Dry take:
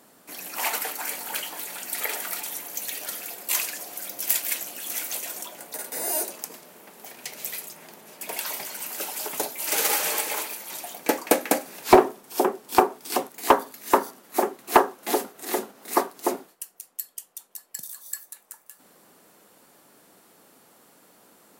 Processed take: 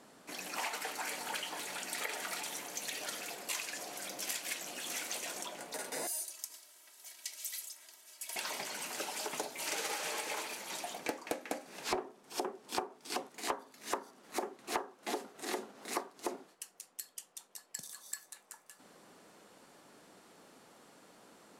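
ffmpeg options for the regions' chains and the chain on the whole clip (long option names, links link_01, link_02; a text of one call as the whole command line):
ffmpeg -i in.wav -filter_complex "[0:a]asettb=1/sr,asplit=3[link_01][link_02][link_03];[link_01]atrim=end=6.074[link_04];[link_02]atrim=start=6.07:end=8.36,asetpts=PTS-STARTPTS,afade=type=in:duration=0.004:curve=qsin,afade=type=out:start_time=2.286:duration=0.004:curve=qsin,aderivative,bandreject=frequency=2500:width=16,aecho=1:1:3.1:0.71,atrim=end_sample=100989[link_05];[link_03]atrim=start=8.356[link_06];[link_04][link_05]acrossfade=duration=0.004:curve1=hsin:curve2=qsin[link_07];[link_07][link_06]acrossfade=duration=0.004:curve1=qsin:curve2=hsin,lowpass=7500,acompressor=threshold=-33dB:ratio=6,volume=-2dB" out.wav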